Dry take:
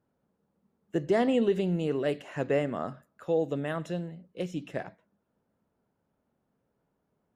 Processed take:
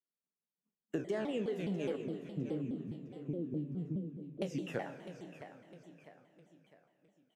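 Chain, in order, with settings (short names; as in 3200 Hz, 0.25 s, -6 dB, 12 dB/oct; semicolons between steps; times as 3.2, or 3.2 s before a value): spectral trails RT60 0.48 s; reverb removal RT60 0.8 s; 1.96–4.42 inverse Chebyshev low-pass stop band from 650 Hz, stop band 40 dB; expander -56 dBFS; HPF 140 Hz 24 dB/oct; compressor 6:1, threshold -37 dBFS, peak gain reduction 16 dB; feedback echo 0.657 s, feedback 44%, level -11.5 dB; Schroeder reverb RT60 3.1 s, combs from 29 ms, DRR 9.5 dB; shaped vibrato saw down 4.8 Hz, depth 250 cents; gain +2.5 dB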